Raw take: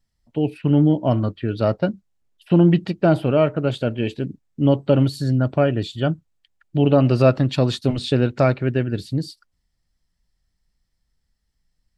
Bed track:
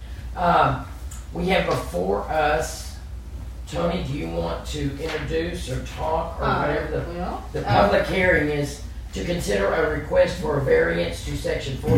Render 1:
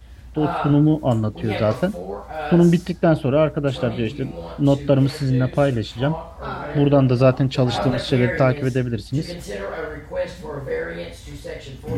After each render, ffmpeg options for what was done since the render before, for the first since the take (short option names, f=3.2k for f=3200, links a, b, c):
-filter_complex "[1:a]volume=-7.5dB[a];[0:a][a]amix=inputs=2:normalize=0"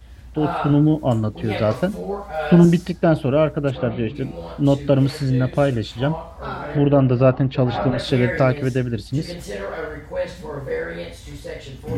-filter_complex "[0:a]asettb=1/sr,asplit=3[a][b][c];[a]atrim=end=1.914[d];[b]atrim=start=1.91:end=2.65,asetpts=PTS-STARTPTS,afade=t=in:d=0.004:c=qsin,afade=t=out:st=0.736:d=0.004:c=qsin,aecho=1:1:4.9:0.86,atrim=end_sample=32634[e];[c]atrim=start=2.646[f];[d][e]acrossfade=d=0.004:c1=hsin:c2=qsin[g];[g][f]acrossfade=d=0.004:c1=qsin:c2=hsin,asplit=3[h][i][j];[h]afade=t=out:st=3.7:d=0.02[k];[i]lowpass=2.5k,afade=t=in:st=3.7:d=0.02,afade=t=out:st=4.14:d=0.02[l];[j]afade=t=in:st=4.14:d=0.02[m];[k][l][m]amix=inputs=3:normalize=0,asettb=1/sr,asplit=3[n][o][p];[n]atrim=end=6.764[q];[o]atrim=start=6.76:end=7.99,asetpts=PTS-STARTPTS,afade=t=in:d=0.004:c=qsin,afade=t=out:st=1.226:d=0.004:c=qsin,lowpass=2.6k[r];[p]atrim=start=7.986[s];[q][r]acrossfade=d=0.004:c1=hsin:c2=qsin[t];[t][s]acrossfade=d=0.004:c1=qsin:c2=hsin"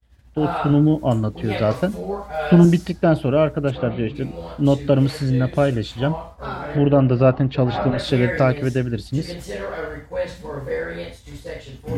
-af "agate=range=-33dB:threshold=-32dB:ratio=3:detection=peak"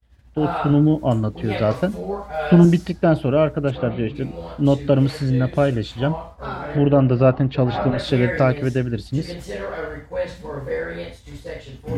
-af "highshelf=f=6.2k:g=-4.5"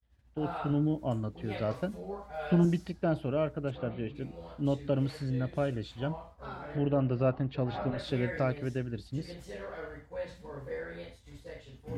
-af "volume=-13dB"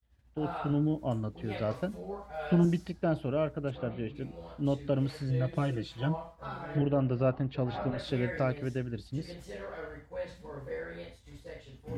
-filter_complex "[0:a]asettb=1/sr,asplit=3[a][b][c];[a]atrim=end=5.294[d];[b]atrim=start=5.29:end=6.82,asetpts=PTS-STARTPTS,afade=t=in:d=0.004:c=qsin,afade=t=out:st=1.526:d=0.004:c=qsin,aecho=1:1:6.1:0.85,atrim=end_sample=67473[e];[c]atrim=start=6.816[f];[d][e]acrossfade=d=0.004:c1=hsin:c2=qsin[g];[g][f]acrossfade=d=0.004:c1=qsin:c2=hsin"